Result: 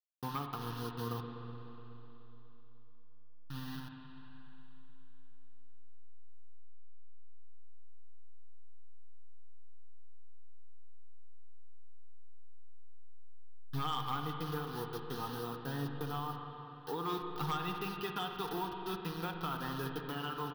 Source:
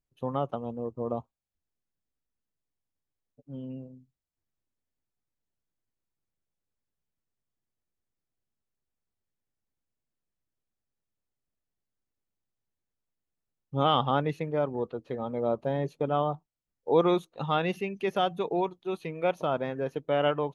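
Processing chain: level-crossing sampler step -38.5 dBFS; low shelf 480 Hz -9 dB; comb 6.6 ms, depth 35%; compressor 16:1, threshold -32 dBFS, peak gain reduction 13 dB; fixed phaser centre 2200 Hz, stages 6; hard clip -33.5 dBFS, distortion -19 dB; spring tank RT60 3.5 s, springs 42/60 ms, chirp 35 ms, DRR 3.5 dB; gain +3.5 dB

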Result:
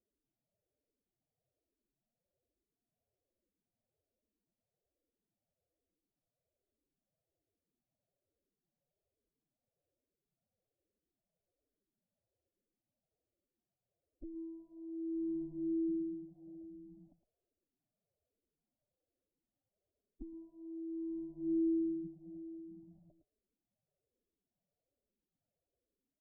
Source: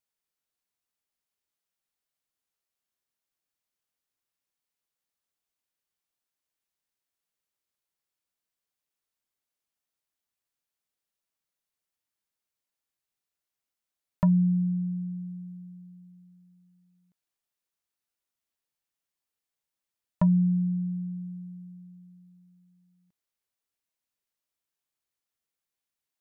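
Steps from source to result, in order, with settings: limiter -27 dBFS, peak gain reduction 11.5 dB; formant-preserving pitch shift +10.5 st; soft clip -33.5 dBFS, distortion -13 dB; echo 0.111 s -11 dB; negative-ratio compressor -45 dBFS, ratio -0.5; steep low-pass 660 Hz 48 dB/oct; endless phaser -1.2 Hz; gain +11.5 dB

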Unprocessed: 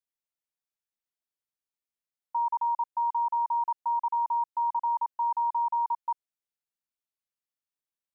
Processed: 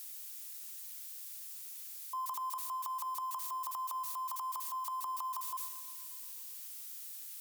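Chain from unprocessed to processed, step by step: switching spikes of -33 dBFS; transient shaper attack -4 dB, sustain +10 dB; varispeed +10%; compressor, threshold -31 dBFS, peak gain reduction 6.5 dB; spring tank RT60 1.8 s, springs 38/47 ms, chirp 45 ms, DRR 12 dB; gain -5.5 dB

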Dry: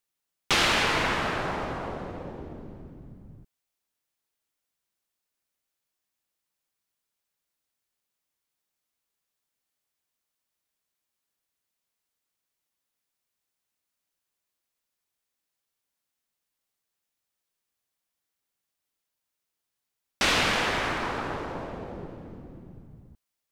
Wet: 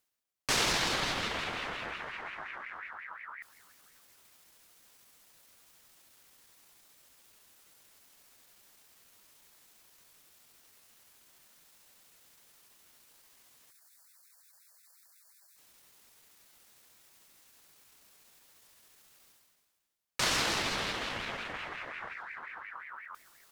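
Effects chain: spectral gain 13.73–15.59, 520–4400 Hz -27 dB; notch 1000 Hz, Q 7; spectral gain 22.15–22.38, 430–1700 Hz -8 dB; reverse; upward compressor, threshold -31 dBFS; reverse; pitch shift +3.5 st; on a send: feedback echo 0.292 s, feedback 47%, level -19.5 dB; on the sum: ring modulator with a swept carrier 1600 Hz, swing 30%, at 5.6 Hz; gain -2.5 dB

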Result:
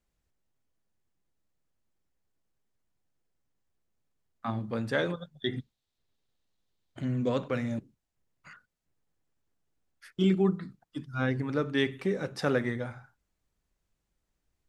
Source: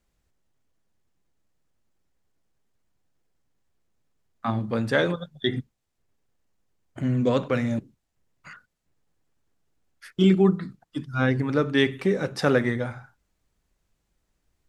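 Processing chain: 5.58–7.05 bell 3800 Hz +12 dB 0.73 oct; gain -6.5 dB

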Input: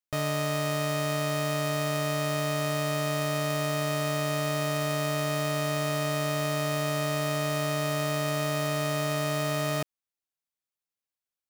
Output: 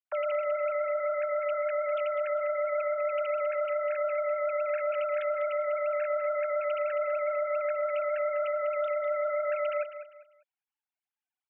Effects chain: sine-wave speech; limiter -25 dBFS, peak gain reduction 4 dB; on a send: feedback echo 0.199 s, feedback 30%, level -11.5 dB; on the sum: gain +1.5 dB

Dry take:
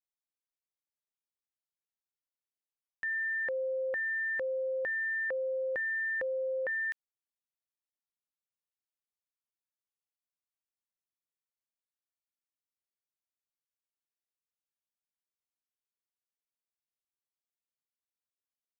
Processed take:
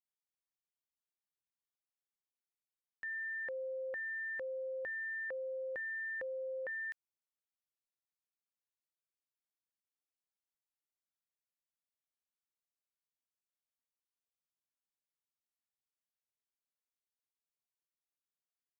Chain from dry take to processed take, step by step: 4.42–4.91 bell 64 Hz +11 dB 0.4 oct; gain -7.5 dB

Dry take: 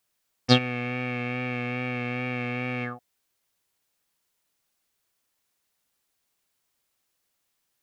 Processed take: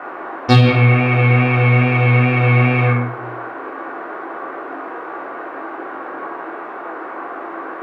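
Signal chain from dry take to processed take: tone controls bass +1 dB, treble -13 dB; on a send: flutter echo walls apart 8.6 m, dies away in 0.48 s; on the sum: band noise 280–1500 Hz -43 dBFS; in parallel at -8 dB: hard clip -18.5 dBFS, distortion -10 dB; on the sum: shoebox room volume 550 m³, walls furnished, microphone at 3.5 m; maximiser +6.5 dB; gain -1 dB

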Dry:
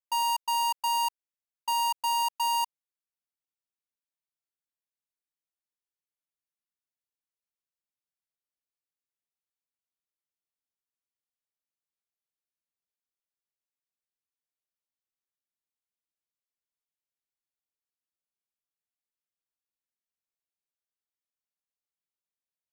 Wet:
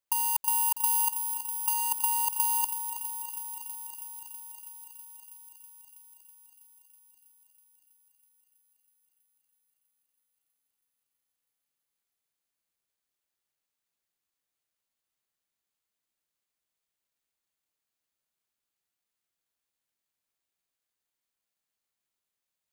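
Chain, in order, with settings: careless resampling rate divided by 4×, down filtered, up zero stuff; negative-ratio compressor -25 dBFS, ratio -0.5; thinning echo 0.324 s, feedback 80%, high-pass 600 Hz, level -9.5 dB

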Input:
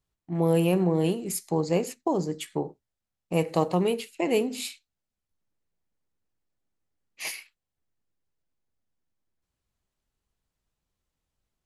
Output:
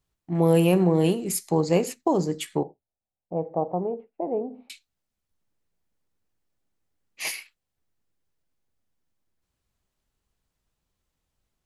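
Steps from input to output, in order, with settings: 2.63–4.7 ladder low-pass 880 Hz, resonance 50%; gain +3.5 dB

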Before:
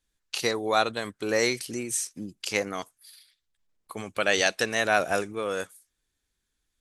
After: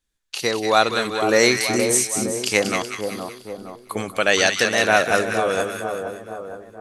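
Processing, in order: AGC gain up to 12 dB; split-band echo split 1200 Hz, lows 0.466 s, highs 0.188 s, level -6 dB

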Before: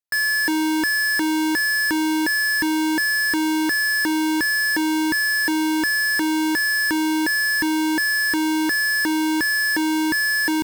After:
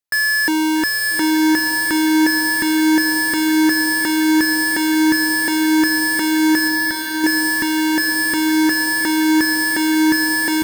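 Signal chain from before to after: 6.68–7.24 fixed phaser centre 1700 Hz, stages 8; diffused feedback echo 0.857 s, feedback 47%, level -6 dB; gain +3.5 dB

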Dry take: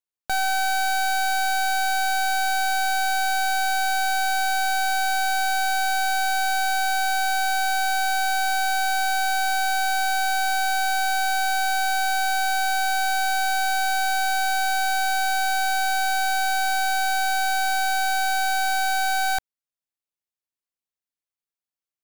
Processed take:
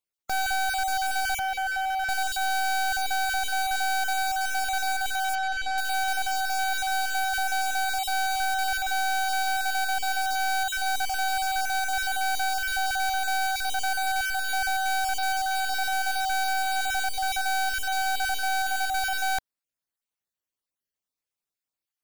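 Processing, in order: random spectral dropouts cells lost 25%; 1.39–2.09 three-band isolator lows -15 dB, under 440 Hz, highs -13 dB, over 2700 Hz; soft clip -27.5 dBFS, distortion -12 dB; 5.35–5.78 air absorption 97 m; gain +3 dB

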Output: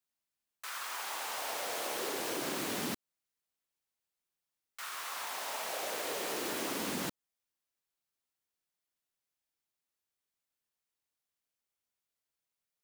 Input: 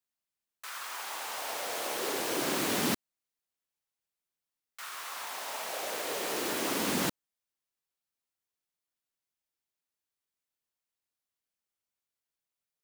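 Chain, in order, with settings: compressor, threshold -33 dBFS, peak gain reduction 8 dB

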